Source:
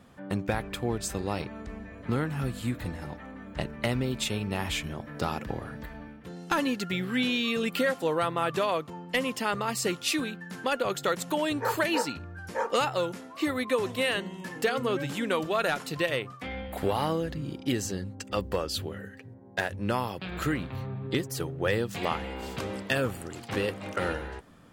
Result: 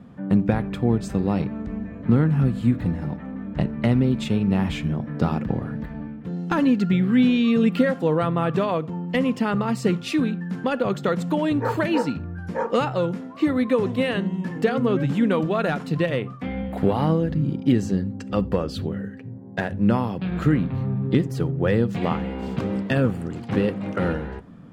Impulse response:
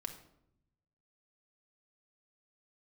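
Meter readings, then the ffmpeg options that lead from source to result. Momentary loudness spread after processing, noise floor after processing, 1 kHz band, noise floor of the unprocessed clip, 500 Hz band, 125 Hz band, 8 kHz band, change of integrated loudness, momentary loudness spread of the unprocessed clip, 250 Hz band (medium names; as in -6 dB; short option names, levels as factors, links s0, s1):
10 LU, -37 dBFS, +2.5 dB, -47 dBFS, +5.5 dB, +11.5 dB, no reading, +7.0 dB, 10 LU, +11.5 dB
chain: -filter_complex "[0:a]lowpass=f=2100:p=1,equalizer=f=170:t=o:w=1.8:g=12,asplit=2[s0][s1];[1:a]atrim=start_sample=2205,afade=t=out:st=0.15:d=0.01,atrim=end_sample=7056[s2];[s1][s2]afir=irnorm=-1:irlink=0,volume=0.447[s3];[s0][s3]amix=inputs=2:normalize=0"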